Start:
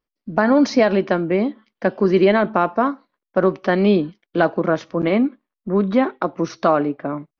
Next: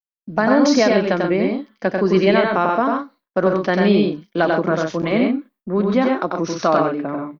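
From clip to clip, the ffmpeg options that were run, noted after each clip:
ffmpeg -i in.wav -filter_complex "[0:a]aemphasis=mode=production:type=50fm,agate=range=-33dB:threshold=-41dB:ratio=3:detection=peak,asplit=2[link_01][link_02];[link_02]aecho=0:1:93.29|131.2:0.708|0.447[link_03];[link_01][link_03]amix=inputs=2:normalize=0,volume=-1dB" out.wav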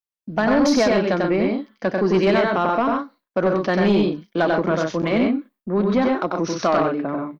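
ffmpeg -i in.wav -af "asoftclip=type=tanh:threshold=-10.5dB" out.wav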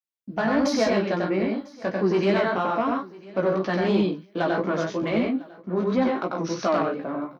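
ffmpeg -i in.wav -af "flanger=delay=15:depth=3.1:speed=3,highpass=61,aecho=1:1:999|1998:0.0794|0.0135,volume=-1.5dB" out.wav

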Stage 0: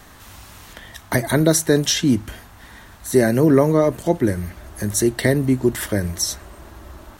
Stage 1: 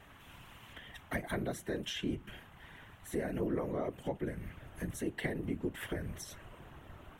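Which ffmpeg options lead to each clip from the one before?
ffmpeg -i in.wav -af "acompressor=threshold=-24dB:ratio=2.5,afftfilt=real='hypot(re,im)*cos(2*PI*random(0))':imag='hypot(re,im)*sin(2*PI*random(1))':win_size=512:overlap=0.75,highshelf=frequency=3700:width_type=q:width=3:gain=-7,volume=-6dB" out.wav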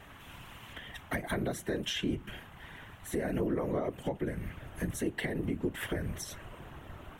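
ffmpeg -i in.wav -af "alimiter=level_in=3dB:limit=-24dB:level=0:latency=1:release=128,volume=-3dB,volume=5dB" out.wav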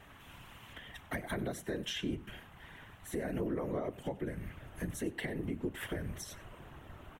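ffmpeg -i in.wav -af "aecho=1:1:95:0.106,volume=-4dB" out.wav

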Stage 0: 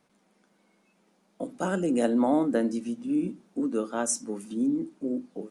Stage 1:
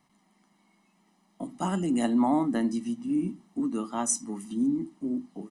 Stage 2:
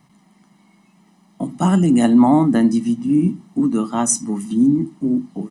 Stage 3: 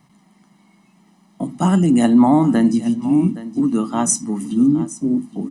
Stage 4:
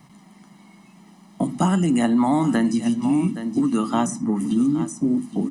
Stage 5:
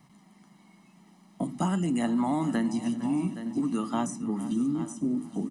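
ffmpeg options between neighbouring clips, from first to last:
ffmpeg -i in.wav -af "aecho=1:1:1:0.8,volume=-1.5dB" out.wav
ffmpeg -i in.wav -af "equalizer=frequency=140:width=1.4:gain=10.5,volume=9dB" out.wav
ffmpeg -i in.wav -af "aecho=1:1:818:0.158" out.wav
ffmpeg -i in.wav -filter_complex "[0:a]acrossover=split=1000|2000[link_01][link_02][link_03];[link_01]acompressor=threshold=-24dB:ratio=4[link_04];[link_02]acompressor=threshold=-34dB:ratio=4[link_05];[link_03]acompressor=threshold=-41dB:ratio=4[link_06];[link_04][link_05][link_06]amix=inputs=3:normalize=0,volume=5dB" out.wav
ffmpeg -i in.wav -af "aecho=1:1:457|914|1371|1828:0.158|0.0713|0.0321|0.0144,volume=-8dB" out.wav

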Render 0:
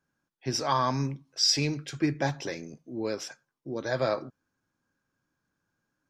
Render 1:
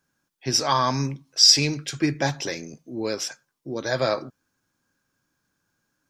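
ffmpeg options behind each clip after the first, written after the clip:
ffmpeg -i in.wav -af "highshelf=frequency=2900:gain=8,volume=3.5dB" out.wav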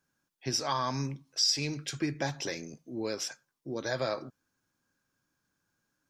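ffmpeg -i in.wav -af "acompressor=threshold=-25dB:ratio=2,volume=-5dB" out.wav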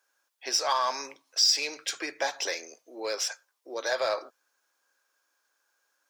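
ffmpeg -i in.wav -filter_complex "[0:a]highpass=frequency=490:width=0.5412,highpass=frequency=490:width=1.3066,asplit=2[link_01][link_02];[link_02]volume=34.5dB,asoftclip=hard,volume=-34.5dB,volume=-7.5dB[link_03];[link_01][link_03]amix=inputs=2:normalize=0,volume=3.5dB" out.wav

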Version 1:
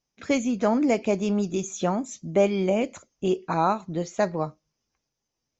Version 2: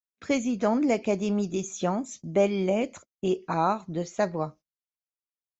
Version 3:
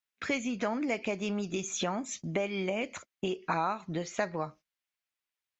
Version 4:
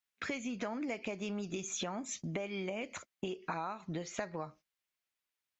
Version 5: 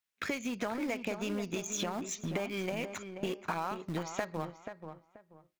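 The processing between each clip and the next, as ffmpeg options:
ffmpeg -i in.wav -af "agate=range=-30dB:threshold=-44dB:ratio=16:detection=peak,volume=-2dB" out.wav
ffmpeg -i in.wav -af "acompressor=threshold=-31dB:ratio=6,equalizer=frequency=2200:width_type=o:width=2.1:gain=11" out.wav
ffmpeg -i in.wav -af "acompressor=threshold=-37dB:ratio=3" out.wav
ffmpeg -i in.wav -filter_complex "[0:a]asplit=2[link_01][link_02];[link_02]aeval=exprs='val(0)*gte(abs(val(0)),0.015)':channel_layout=same,volume=-5.5dB[link_03];[link_01][link_03]amix=inputs=2:normalize=0,asplit=2[link_04][link_05];[link_05]adelay=483,lowpass=frequency=1700:poles=1,volume=-8dB,asplit=2[link_06][link_07];[link_07]adelay=483,lowpass=frequency=1700:poles=1,volume=0.26,asplit=2[link_08][link_09];[link_09]adelay=483,lowpass=frequency=1700:poles=1,volume=0.26[link_10];[link_04][link_06][link_08][link_10]amix=inputs=4:normalize=0" out.wav

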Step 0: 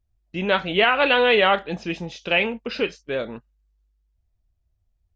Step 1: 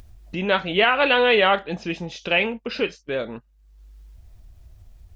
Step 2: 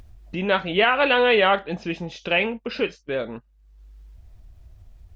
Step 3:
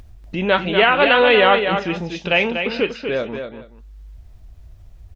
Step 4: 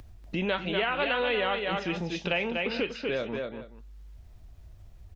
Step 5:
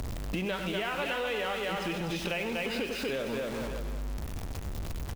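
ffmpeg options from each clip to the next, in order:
ffmpeg -i in.wav -af "acompressor=mode=upward:threshold=-27dB:ratio=2.5" out.wav
ffmpeg -i in.wav -af "highshelf=frequency=4800:gain=-6.5" out.wav
ffmpeg -i in.wav -af "aecho=1:1:241|426:0.447|0.106,volume=4dB" out.wav
ffmpeg -i in.wav -filter_complex "[0:a]acrossover=split=100|2400[link_01][link_02][link_03];[link_01]acompressor=threshold=-43dB:ratio=4[link_04];[link_02]acompressor=threshold=-24dB:ratio=4[link_05];[link_03]acompressor=threshold=-31dB:ratio=4[link_06];[link_04][link_05][link_06]amix=inputs=3:normalize=0,volume=-4dB" out.wav
ffmpeg -i in.wav -af "aeval=exprs='val(0)+0.5*0.0224*sgn(val(0))':channel_layout=same,aecho=1:1:96|336:0.316|0.251,acompressor=threshold=-35dB:ratio=3,volume=2.5dB" out.wav

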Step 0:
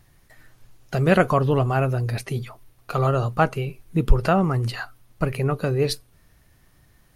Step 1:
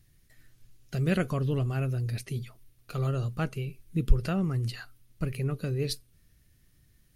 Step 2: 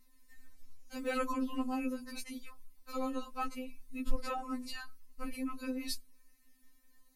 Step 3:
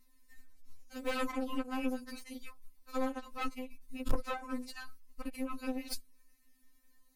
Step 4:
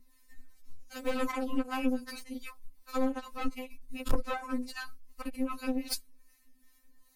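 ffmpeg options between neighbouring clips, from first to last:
ffmpeg -i in.wav -af "equalizer=frequency=870:width=0.81:gain=-15,volume=-5dB" out.wav
ffmpeg -i in.wav -af "equalizer=frequency=630:width_type=o:width=0.33:gain=-6,equalizer=frequency=1000:width_type=o:width=0.33:gain=9,equalizer=frequency=1600:width_type=o:width=0.33:gain=-4,equalizer=frequency=3150:width_type=o:width=0.33:gain=-7,afftfilt=real='re*3.46*eq(mod(b,12),0)':imag='im*3.46*eq(mod(b,12),0)':win_size=2048:overlap=0.75,volume=1dB" out.wav
ffmpeg -i in.wav -af "aeval=exprs='0.133*(cos(1*acos(clip(val(0)/0.133,-1,1)))-cos(1*PI/2))+0.0266*(cos(3*acos(clip(val(0)/0.133,-1,1)))-cos(3*PI/2))+0.00944*(cos(5*acos(clip(val(0)/0.133,-1,1)))-cos(5*PI/2))+0.015*(cos(8*acos(clip(val(0)/0.133,-1,1)))-cos(8*PI/2))':channel_layout=same,volume=1dB" out.wav
ffmpeg -i in.wav -filter_complex "[0:a]acrossover=split=570[link_01][link_02];[link_01]aeval=exprs='val(0)*(1-0.7/2+0.7/2*cos(2*PI*2.6*n/s))':channel_layout=same[link_03];[link_02]aeval=exprs='val(0)*(1-0.7/2-0.7/2*cos(2*PI*2.6*n/s))':channel_layout=same[link_04];[link_03][link_04]amix=inputs=2:normalize=0,volume=7dB" out.wav

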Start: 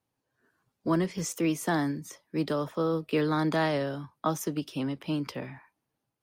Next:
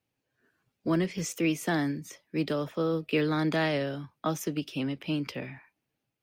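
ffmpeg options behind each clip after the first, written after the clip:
ffmpeg -i in.wav -af "equalizer=frequency=1000:width_type=o:width=0.67:gain=-6,equalizer=frequency=2500:width_type=o:width=0.67:gain=6,equalizer=frequency=10000:width_type=o:width=0.67:gain=-4" out.wav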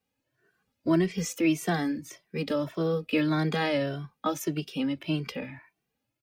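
ffmpeg -i in.wav -filter_complex "[0:a]asplit=2[link_01][link_02];[link_02]adelay=2.1,afreqshift=1.7[link_03];[link_01][link_03]amix=inputs=2:normalize=1,volume=4dB" out.wav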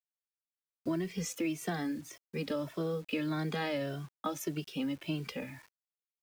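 ffmpeg -i in.wav -af "acompressor=threshold=-26dB:ratio=6,acrusher=bits=8:mix=0:aa=0.000001,volume=-4dB" out.wav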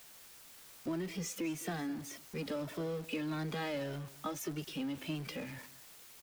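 ffmpeg -i in.wav -af "aeval=exprs='val(0)+0.5*0.0119*sgn(val(0))':channel_layout=same,aecho=1:1:208:0.119,volume=-5.5dB" out.wav

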